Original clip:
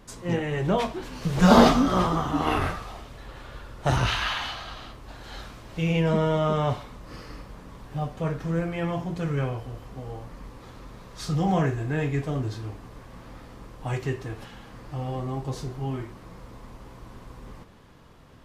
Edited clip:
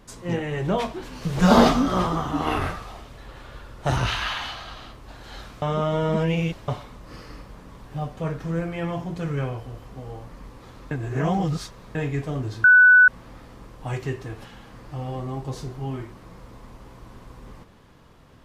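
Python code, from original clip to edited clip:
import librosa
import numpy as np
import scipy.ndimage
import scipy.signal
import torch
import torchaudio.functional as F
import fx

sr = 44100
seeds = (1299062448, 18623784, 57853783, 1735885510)

y = fx.edit(x, sr, fx.reverse_span(start_s=5.62, length_s=1.06),
    fx.reverse_span(start_s=10.91, length_s=1.04),
    fx.bleep(start_s=12.64, length_s=0.44, hz=1490.0, db=-9.0), tone=tone)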